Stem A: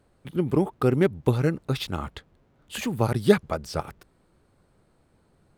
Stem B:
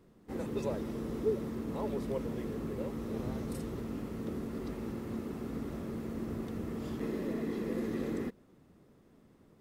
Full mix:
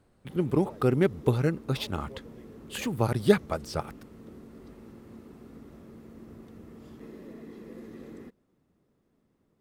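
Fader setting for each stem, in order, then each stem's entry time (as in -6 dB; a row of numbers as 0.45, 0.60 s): -2.5, -9.5 dB; 0.00, 0.00 s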